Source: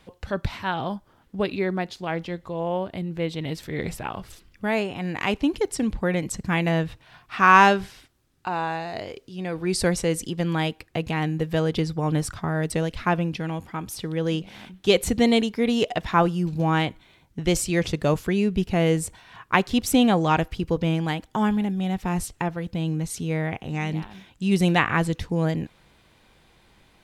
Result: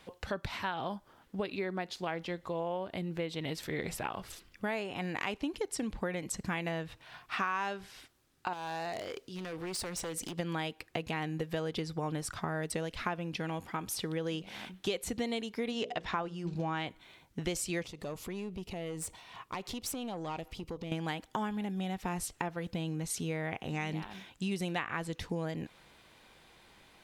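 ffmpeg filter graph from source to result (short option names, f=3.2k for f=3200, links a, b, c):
-filter_complex "[0:a]asettb=1/sr,asplit=3[a][b][c];[a]atrim=end=8.534[d];[b]atrim=start=8.53:end=10.39,asetpts=PTS-STARTPTS,afade=t=in:d=0.004:c=qsin,afade=t=out:st=1.856:d=0.004:c=qsin,acompressor=threshold=-31dB:ratio=5:attack=3.2:release=140:knee=1:detection=peak,aeval=exprs='0.0316*(abs(mod(val(0)/0.0316+3,4)-2)-1)':c=same[e];[c]atrim=start=10.386[f];[d][e]acrossfade=d=0.004:c1=hsin:c2=qsin[g];[g][f]acrossfade=d=0.004:c1=qsin:c2=hsin,asettb=1/sr,asplit=3[h][i][j];[h]atrim=end=15.714[k];[i]atrim=start=15.71:end=16.86,asetpts=PTS-STARTPTS,afade=t=in:d=0.004:c=qsin,afade=t=out:st=1.146:d=0.004:c=qsin,lowpass=6.9k,bandreject=f=60:t=h:w=6,bandreject=f=120:t=h:w=6,bandreject=f=180:t=h:w=6,bandreject=f=240:t=h:w=6,bandreject=f=300:t=h:w=6,bandreject=f=360:t=h:w=6,bandreject=f=420:t=h:w=6,bandreject=f=480:t=h:w=6,bandreject=f=540:t=h:w=6[l];[j]atrim=start=16.856[m];[k][l]acrossfade=d=0.004:c1=hsin:c2=qsin[n];[n][m]acrossfade=d=0.004:c1=qsin:c2=hsin,asettb=1/sr,asplit=3[o][p][q];[o]atrim=end=17.834[r];[p]atrim=start=17.83:end=20.92,asetpts=PTS-STARTPTS,afade=t=in:d=0.004:c=qsin,afade=t=out:st=3.086:d=0.004:c=qsin,equalizer=f=1.6k:t=o:w=0.3:g=-12,acompressor=threshold=-31dB:ratio=5:attack=3.2:release=140:knee=1:detection=peak,aeval=exprs='(tanh(28.2*val(0)+0.35)-tanh(0.35))/28.2':c=same[s];[q]atrim=start=20.916[t];[r][s]acrossfade=d=0.004:c1=hsin:c2=qsin[u];[u][t]acrossfade=d=0.004:c1=qsin:c2=hsin,lowshelf=f=230:g=-9,acompressor=threshold=-32dB:ratio=6"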